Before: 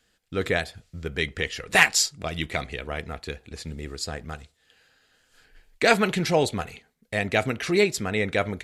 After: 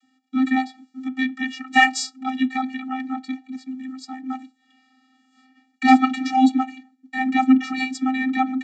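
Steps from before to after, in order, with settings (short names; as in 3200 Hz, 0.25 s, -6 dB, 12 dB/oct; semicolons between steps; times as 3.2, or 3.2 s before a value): vocoder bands 32, square 260 Hz; 3.56–4.24 harmonic-percussive split harmonic -6 dB; gain +5.5 dB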